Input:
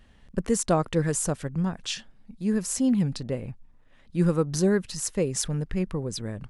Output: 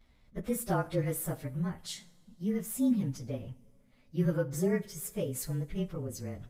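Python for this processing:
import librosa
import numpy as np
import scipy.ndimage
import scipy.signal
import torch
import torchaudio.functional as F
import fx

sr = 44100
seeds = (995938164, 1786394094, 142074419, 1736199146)

y = fx.partial_stretch(x, sr, pct=108)
y = fx.rev_double_slope(y, sr, seeds[0], early_s=0.49, late_s=3.5, knee_db=-22, drr_db=13.0)
y = y * 10.0 ** (-5.0 / 20.0)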